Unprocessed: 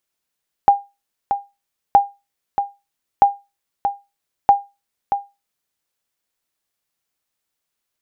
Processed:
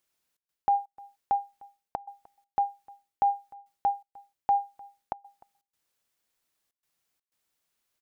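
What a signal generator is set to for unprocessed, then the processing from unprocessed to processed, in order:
sonar ping 804 Hz, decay 0.24 s, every 1.27 s, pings 4, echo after 0.63 s, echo -8.5 dB -2.5 dBFS
reverse; compressor 6:1, threshold -23 dBFS; reverse; step gate "xxx.xxx.xxxxx" 123 bpm -24 dB; echo 0.303 s -24 dB

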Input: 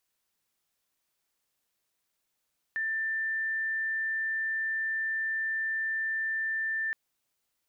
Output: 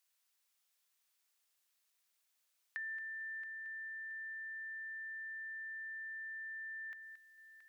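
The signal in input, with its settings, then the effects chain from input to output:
tone sine 1780 Hz -28 dBFS 4.17 s
HPF 1500 Hz 6 dB/oct; compressor 12:1, threshold -41 dBFS; on a send: multi-head echo 0.225 s, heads first and third, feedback 42%, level -13 dB

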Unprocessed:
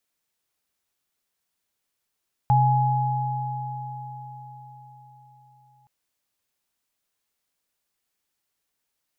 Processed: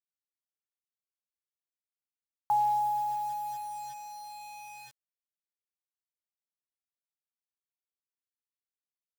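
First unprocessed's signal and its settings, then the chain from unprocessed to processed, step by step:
sine partials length 3.37 s, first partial 130 Hz, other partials 836 Hz, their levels 0 dB, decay 4.60 s, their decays 4.90 s, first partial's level -17 dB
low shelf 420 Hz -8.5 dB; band-pass sweep 1000 Hz -> 340 Hz, 4.44–7.08; bit-crush 8-bit

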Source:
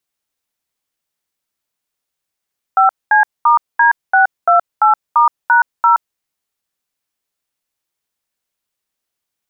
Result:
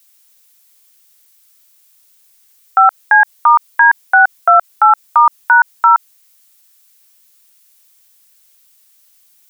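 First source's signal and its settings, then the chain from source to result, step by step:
DTMF "5C*D628*#0", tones 0.122 s, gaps 0.219 s, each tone -9.5 dBFS
tilt +4 dB/oct; maximiser +13.5 dB

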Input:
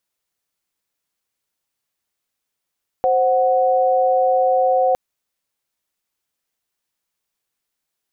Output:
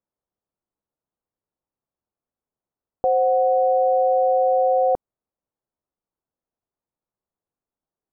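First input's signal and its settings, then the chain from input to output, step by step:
chord C5/F#5 sine, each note -16 dBFS 1.91 s
Bessel low-pass 780 Hz, order 4

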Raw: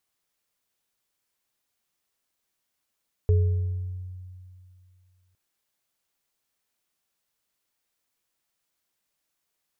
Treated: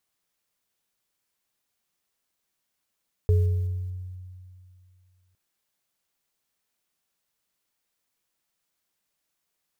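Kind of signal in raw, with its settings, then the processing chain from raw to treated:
sine partials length 2.06 s, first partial 91.6 Hz, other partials 425 Hz, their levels -10 dB, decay 2.45 s, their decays 0.95 s, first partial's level -15.5 dB
block floating point 7-bit; bell 180 Hz +3 dB 0.34 oct

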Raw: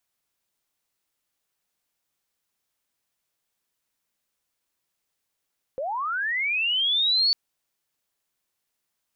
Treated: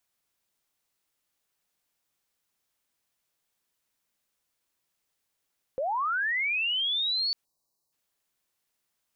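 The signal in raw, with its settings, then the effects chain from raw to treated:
chirp linear 500 Hz -> 4500 Hz -26.5 dBFS -> -17.5 dBFS 1.55 s
limiter -25 dBFS; spectral delete 7.45–7.92, 1200–3800 Hz

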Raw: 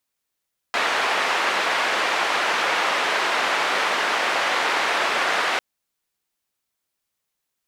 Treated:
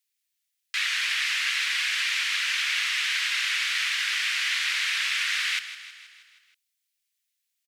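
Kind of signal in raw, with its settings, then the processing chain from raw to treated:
noise band 530–2000 Hz, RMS -22 dBFS 4.85 s
inverse Chebyshev high-pass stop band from 570 Hz, stop band 60 dB; on a send: feedback echo 0.159 s, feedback 59%, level -13 dB

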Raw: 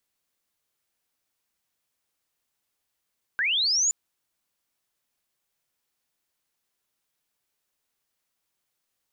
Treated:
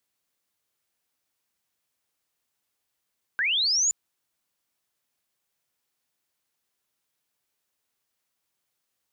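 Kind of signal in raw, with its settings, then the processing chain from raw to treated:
chirp linear 1500 Hz -> 7100 Hz -22 dBFS -> -19.5 dBFS 0.52 s
HPF 47 Hz

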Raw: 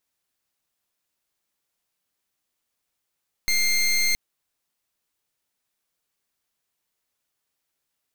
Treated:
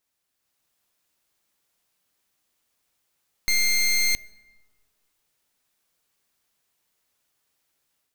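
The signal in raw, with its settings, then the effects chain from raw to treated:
pulse 2110 Hz, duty 20% -21 dBFS 0.67 s
limiter -26 dBFS; AGC gain up to 5.5 dB; plate-style reverb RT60 1.7 s, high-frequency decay 0.45×, DRR 20 dB

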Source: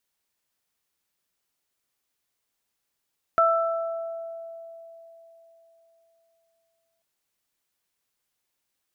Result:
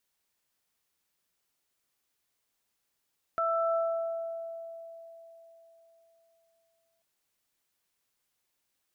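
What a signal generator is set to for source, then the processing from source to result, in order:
additive tone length 3.64 s, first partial 664 Hz, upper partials 3.5 dB, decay 3.84 s, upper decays 1.34 s, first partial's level -19.5 dB
limiter -23.5 dBFS

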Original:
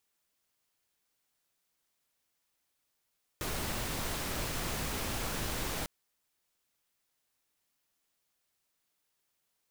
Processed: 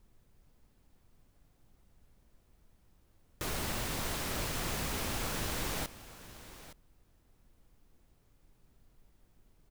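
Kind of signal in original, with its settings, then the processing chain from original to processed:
noise pink, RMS -35.5 dBFS 2.45 s
added noise brown -63 dBFS; echo 0.867 s -15.5 dB

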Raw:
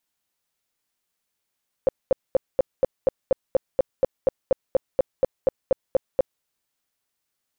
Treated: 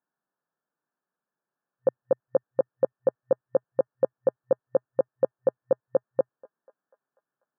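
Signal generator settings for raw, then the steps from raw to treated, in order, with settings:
tone bursts 529 Hz, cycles 9, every 0.24 s, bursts 19, -13 dBFS
FFT band-pass 120–1800 Hz; thinning echo 0.245 s, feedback 73%, high-pass 740 Hz, level -20 dB

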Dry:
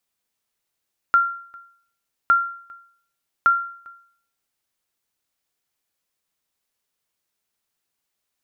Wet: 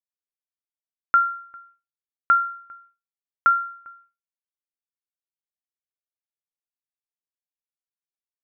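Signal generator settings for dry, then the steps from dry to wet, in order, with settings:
sonar ping 1380 Hz, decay 0.56 s, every 1.16 s, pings 3, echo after 0.40 s, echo -27.5 dB -9 dBFS
block floating point 7-bit; expander -50 dBFS; LPF 2400 Hz 24 dB/oct

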